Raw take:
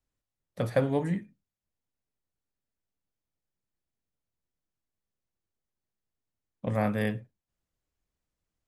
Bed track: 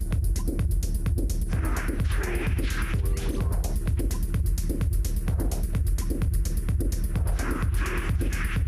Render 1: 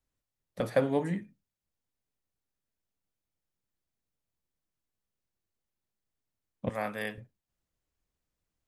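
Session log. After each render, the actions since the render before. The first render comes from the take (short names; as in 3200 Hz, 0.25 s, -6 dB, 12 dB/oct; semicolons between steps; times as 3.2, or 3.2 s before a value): 0.6–1.19 HPF 180 Hz; 6.69–7.18 HPF 860 Hz 6 dB/oct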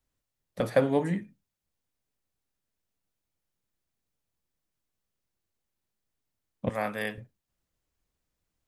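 gain +3 dB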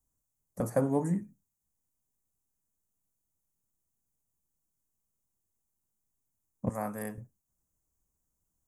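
EQ curve 220 Hz 0 dB, 540 Hz -6 dB, 1000 Hz -2 dB, 3600 Hz -26 dB, 6600 Hz +5 dB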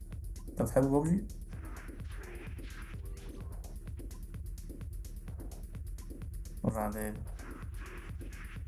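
add bed track -18 dB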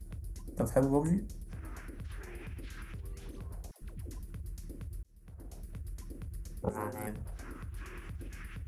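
3.71–4.2 dispersion lows, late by 0.109 s, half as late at 510 Hz; 5.03–5.68 fade in; 6.62–7.07 ring modulator 310 Hz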